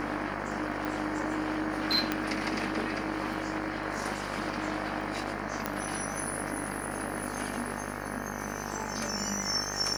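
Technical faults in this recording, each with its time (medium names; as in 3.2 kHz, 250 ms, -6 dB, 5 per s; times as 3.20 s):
buzz 50 Hz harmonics 37 -38 dBFS
crackle 12 per s
0.85 s: pop
2.12 s: pop -13 dBFS
5.66 s: pop -14 dBFS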